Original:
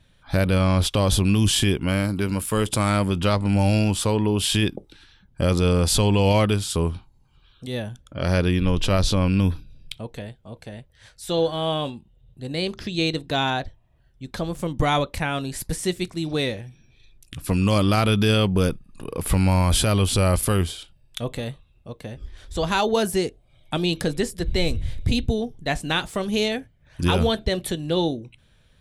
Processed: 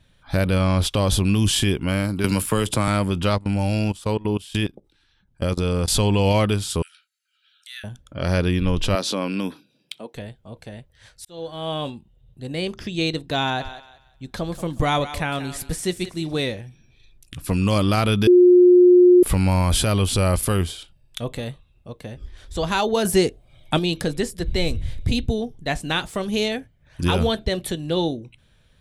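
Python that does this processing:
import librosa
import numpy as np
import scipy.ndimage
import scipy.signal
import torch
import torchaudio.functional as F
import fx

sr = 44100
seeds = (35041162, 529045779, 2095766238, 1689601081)

y = fx.band_squash(x, sr, depth_pct=100, at=(2.24, 2.88))
y = fx.level_steps(y, sr, step_db=21, at=(3.38, 5.88))
y = fx.cheby1_highpass(y, sr, hz=1300.0, order=10, at=(6.82, 7.84))
y = fx.highpass(y, sr, hz=220.0, slope=24, at=(8.95, 10.15))
y = fx.notch(y, sr, hz=4100.0, q=6.3, at=(12.47, 13.01))
y = fx.echo_thinned(y, sr, ms=181, feedback_pct=29, hz=430.0, wet_db=-12.0, at=(13.59, 16.4), fade=0.02)
y = fx.edit(y, sr, fx.fade_in_span(start_s=11.25, length_s=0.64),
    fx.bleep(start_s=18.27, length_s=0.96, hz=358.0, db=-8.0),
    fx.clip_gain(start_s=23.05, length_s=0.74, db=5.5), tone=tone)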